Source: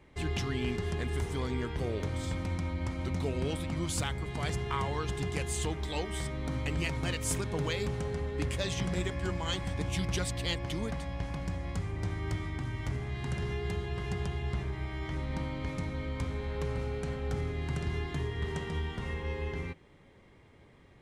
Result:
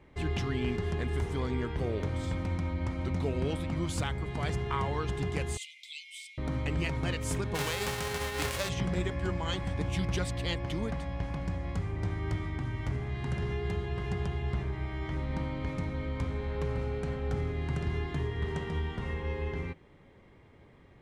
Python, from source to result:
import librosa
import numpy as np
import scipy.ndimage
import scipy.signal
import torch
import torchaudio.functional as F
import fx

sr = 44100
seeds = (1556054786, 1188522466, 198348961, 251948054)

y = fx.brickwall_highpass(x, sr, low_hz=2000.0, at=(5.57, 6.38))
y = fx.envelope_flatten(y, sr, power=0.3, at=(7.54, 8.68), fade=0.02)
y = fx.high_shelf(y, sr, hz=3900.0, db=-8.5)
y = F.gain(torch.from_numpy(y), 1.5).numpy()